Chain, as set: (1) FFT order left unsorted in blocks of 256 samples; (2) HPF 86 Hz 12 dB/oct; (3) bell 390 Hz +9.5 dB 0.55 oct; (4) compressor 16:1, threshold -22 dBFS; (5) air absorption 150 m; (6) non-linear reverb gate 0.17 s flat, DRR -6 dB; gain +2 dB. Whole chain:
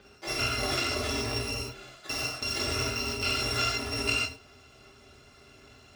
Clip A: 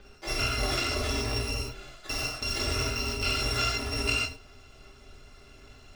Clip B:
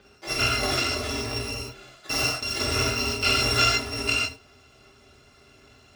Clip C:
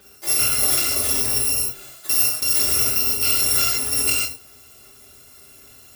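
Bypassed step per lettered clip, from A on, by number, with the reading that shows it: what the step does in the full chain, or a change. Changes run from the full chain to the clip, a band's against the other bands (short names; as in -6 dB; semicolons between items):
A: 2, 125 Hz band +3.0 dB; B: 4, mean gain reduction 2.5 dB; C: 5, 8 kHz band +18.0 dB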